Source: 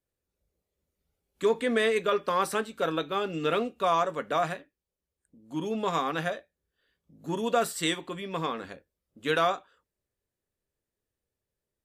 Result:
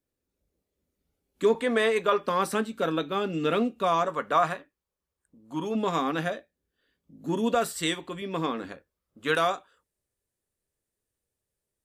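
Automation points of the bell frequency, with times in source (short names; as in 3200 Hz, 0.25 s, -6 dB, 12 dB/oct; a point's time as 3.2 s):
bell +8 dB 0.82 oct
270 Hz
from 1.55 s 920 Hz
from 2.25 s 230 Hz
from 4.08 s 1100 Hz
from 5.75 s 260 Hz
from 7.54 s 71 Hz
from 8.22 s 280 Hz
from 8.72 s 1200 Hz
from 9.35 s 9400 Hz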